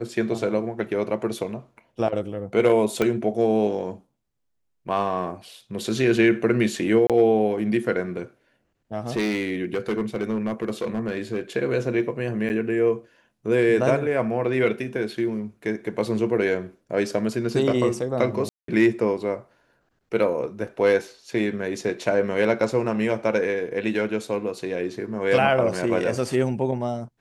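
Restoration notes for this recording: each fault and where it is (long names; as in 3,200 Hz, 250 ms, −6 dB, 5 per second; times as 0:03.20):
0:03.02: click −9 dBFS
0:07.07–0:07.10: drop-out 27 ms
0:09.16–0:11.40: clipping −19.5 dBFS
0:12.49–0:12.50: drop-out 9.2 ms
0:18.49–0:18.68: drop-out 193 ms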